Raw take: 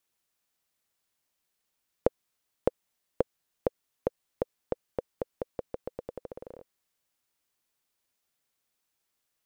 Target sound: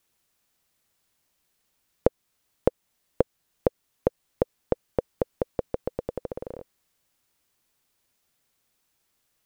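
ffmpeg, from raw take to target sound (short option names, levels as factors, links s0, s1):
-filter_complex "[0:a]lowshelf=f=250:g=5.5,asplit=2[s0][s1];[s1]alimiter=limit=0.211:level=0:latency=1:release=411,volume=1.19[s2];[s0][s2]amix=inputs=2:normalize=0"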